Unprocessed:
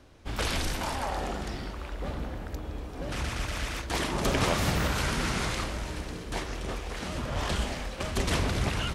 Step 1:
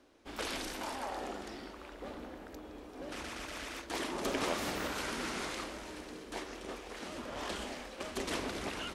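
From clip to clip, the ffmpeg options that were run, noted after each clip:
-af "lowshelf=f=190:t=q:w=1.5:g=-12,volume=0.422"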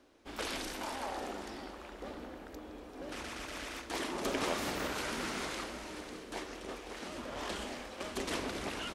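-af "aecho=1:1:548:0.224"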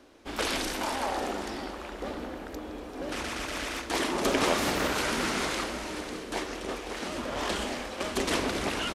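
-af "aresample=32000,aresample=44100,volume=2.66"

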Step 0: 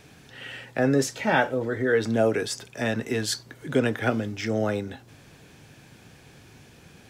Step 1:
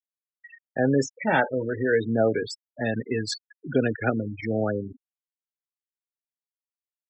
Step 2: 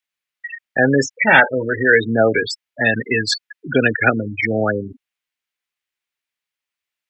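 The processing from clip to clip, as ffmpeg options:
-af "afftfilt=real='re*gte(hypot(re,im),0.0708)':imag='im*gte(hypot(re,im),0.0708)':win_size=1024:overlap=0.75"
-af "equalizer=f=2300:w=0.72:g=13.5,apsyclip=2.24,volume=0.794"

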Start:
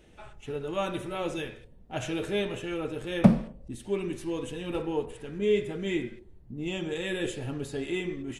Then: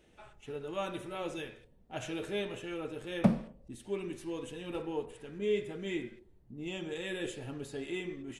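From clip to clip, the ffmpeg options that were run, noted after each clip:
-af "lowshelf=f=140:g=-6,volume=0.531"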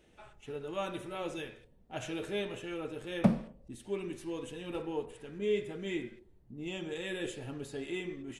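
-af anull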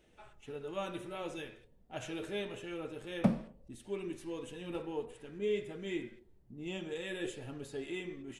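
-af "flanger=delay=1.3:depth=4.7:regen=85:speed=0.53:shape=triangular,volume=1.26"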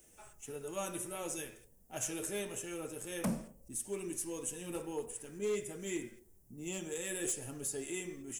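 -filter_complex "[0:a]acrossover=split=110[s0][s1];[s1]aexciter=amount=12.2:drive=3.8:freq=5700[s2];[s0][s2]amix=inputs=2:normalize=0,asoftclip=type=hard:threshold=0.0376,volume=0.891"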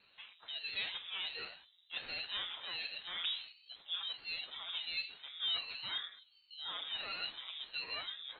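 -filter_complex "[0:a]asplit=2[s0][s1];[s1]highpass=f=720:p=1,volume=3.98,asoftclip=type=tanh:threshold=0.0355[s2];[s0][s2]amix=inputs=2:normalize=0,lowpass=f=2600:p=1,volume=0.501,lowpass=f=3200:t=q:w=0.5098,lowpass=f=3200:t=q:w=0.6013,lowpass=f=3200:t=q:w=0.9,lowpass=f=3200:t=q:w=2.563,afreqshift=-3800,aeval=exprs='val(0)*sin(2*PI*410*n/s+410*0.8/1.4*sin(2*PI*1.4*n/s))':c=same,volume=1.26"

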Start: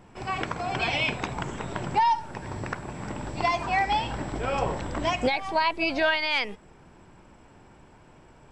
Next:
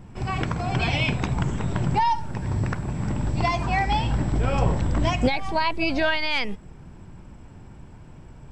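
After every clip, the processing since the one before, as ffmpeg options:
-af "bass=f=250:g=13,treble=f=4000:g=2"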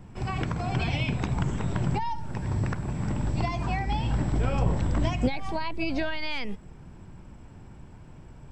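-filter_complex "[0:a]acrossover=split=370[s0][s1];[s1]acompressor=threshold=0.0398:ratio=6[s2];[s0][s2]amix=inputs=2:normalize=0,volume=0.75"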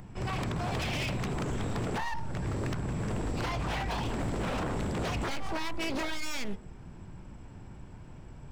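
-af "bandreject=f=76.85:t=h:w=4,bandreject=f=153.7:t=h:w=4,bandreject=f=230.55:t=h:w=4,bandreject=f=307.4:t=h:w=4,bandreject=f=384.25:t=h:w=4,bandreject=f=461.1:t=h:w=4,bandreject=f=537.95:t=h:w=4,bandreject=f=614.8:t=h:w=4,bandreject=f=691.65:t=h:w=4,bandreject=f=768.5:t=h:w=4,bandreject=f=845.35:t=h:w=4,bandreject=f=922.2:t=h:w=4,bandreject=f=999.05:t=h:w=4,bandreject=f=1075.9:t=h:w=4,bandreject=f=1152.75:t=h:w=4,bandreject=f=1229.6:t=h:w=4,bandreject=f=1306.45:t=h:w=4,bandreject=f=1383.3:t=h:w=4,bandreject=f=1460.15:t=h:w=4,bandreject=f=1537:t=h:w=4,aeval=exprs='0.0447*(abs(mod(val(0)/0.0447+3,4)-2)-1)':c=same,acompressor=mode=upward:threshold=0.00316:ratio=2.5"

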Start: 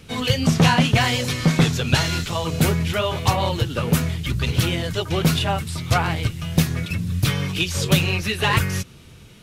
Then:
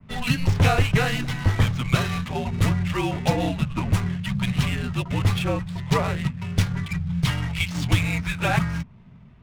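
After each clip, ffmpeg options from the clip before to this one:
-af "adynamicequalizer=threshold=0.0112:dfrequency=4800:dqfactor=0.89:tfrequency=4800:tqfactor=0.89:attack=5:release=100:ratio=0.375:range=3:mode=cutabove:tftype=bell,afreqshift=-260,adynamicsmooth=sensitivity=7.5:basefreq=990,volume=0.794"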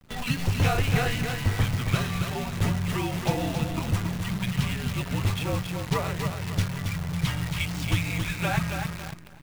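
-filter_complex "[0:a]asplit=2[s0][s1];[s1]aecho=0:1:275|550|825|1100:0.501|0.18|0.065|0.0234[s2];[s0][s2]amix=inputs=2:normalize=0,acrusher=bits=6:dc=4:mix=0:aa=0.000001,volume=0.562"

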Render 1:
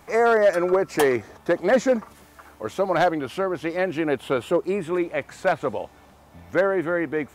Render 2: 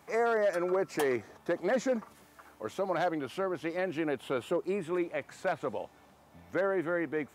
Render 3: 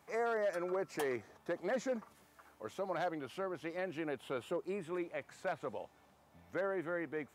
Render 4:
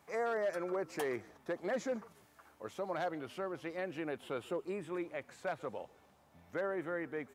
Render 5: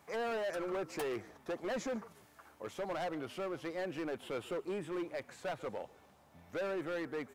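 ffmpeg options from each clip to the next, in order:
-af "highpass=100,alimiter=limit=0.211:level=0:latency=1,volume=0.422"
-af "equalizer=f=290:w=1.5:g=-2,volume=0.473"
-filter_complex "[0:a]asplit=3[s0][s1][s2];[s1]adelay=139,afreqshift=-54,volume=0.0708[s3];[s2]adelay=278,afreqshift=-108,volume=0.0219[s4];[s0][s3][s4]amix=inputs=3:normalize=0"
-af "asoftclip=type=hard:threshold=0.015,volume=1.33"

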